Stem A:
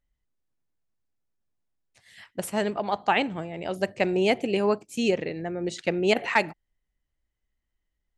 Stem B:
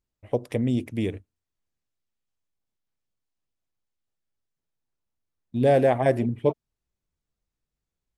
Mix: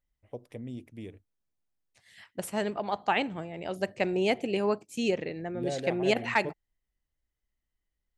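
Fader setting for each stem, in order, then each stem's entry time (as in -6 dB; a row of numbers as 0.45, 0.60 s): -4.0, -15.5 dB; 0.00, 0.00 s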